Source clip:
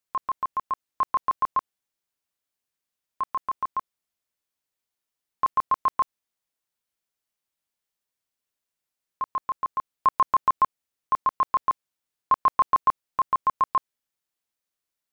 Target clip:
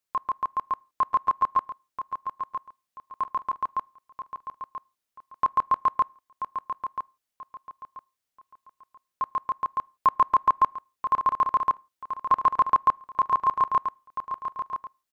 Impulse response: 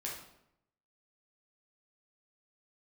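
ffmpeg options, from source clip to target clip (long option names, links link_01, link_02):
-filter_complex "[0:a]aecho=1:1:984|1968|2952:0.355|0.0993|0.0278,asplit=2[link_01][link_02];[1:a]atrim=start_sample=2205,afade=type=out:start_time=0.34:duration=0.01,atrim=end_sample=15435,asetrate=74970,aresample=44100[link_03];[link_02][link_03]afir=irnorm=-1:irlink=0,volume=-20dB[link_04];[link_01][link_04]amix=inputs=2:normalize=0"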